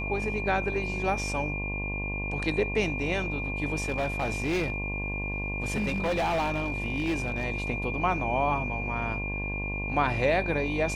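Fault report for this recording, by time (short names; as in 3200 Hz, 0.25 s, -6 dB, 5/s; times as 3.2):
buzz 50 Hz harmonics 22 -34 dBFS
tone 2400 Hz -33 dBFS
3.82–7.45 clipped -23.5 dBFS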